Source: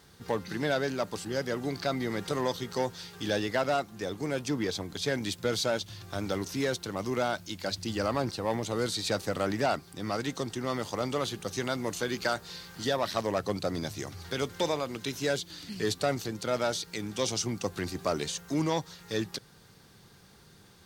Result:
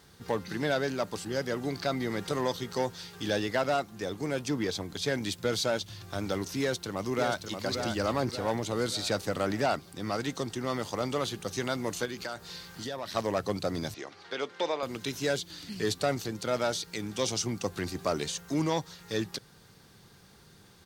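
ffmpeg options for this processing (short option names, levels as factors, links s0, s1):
-filter_complex "[0:a]asplit=2[s0][s1];[s1]afade=t=in:st=6.6:d=0.01,afade=t=out:st=7.65:d=0.01,aecho=0:1:580|1160|1740|2320|2900|3480:0.501187|0.250594|0.125297|0.0626484|0.0313242|0.0156621[s2];[s0][s2]amix=inputs=2:normalize=0,asettb=1/sr,asplit=3[s3][s4][s5];[s3]atrim=end=12.054[s6];[s4]atrim=start=12.05:end=13.15,asetpts=PTS-STARTPTS,afade=t=in:d=0.004:c=qsin,afade=t=out:st=1.096:d=0.004:c=qsin,acompressor=threshold=0.0158:ratio=2.5:attack=3.2:release=140:knee=1:detection=peak[s7];[s5]atrim=start=13.146[s8];[s6][s7]acrossfade=d=0.004:c1=hsin:c2=qsin[s9];[s9][s8]acrossfade=d=0.004:c1=qsin:c2=hsin,asettb=1/sr,asplit=3[s10][s11][s12];[s10]atrim=end=13.944[s13];[s11]atrim=start=13.94:end=14.83,asetpts=PTS-STARTPTS,afade=t=in:d=0.004:c=qsin,afade=t=out:st=0.886:d=0.004:c=qsin,highpass=370,lowpass=3900[s14];[s12]atrim=start=14.826[s15];[s13][s14]acrossfade=d=0.004:c1=hsin:c2=qsin[s16];[s16][s15]acrossfade=d=0.004:c1=qsin:c2=hsin"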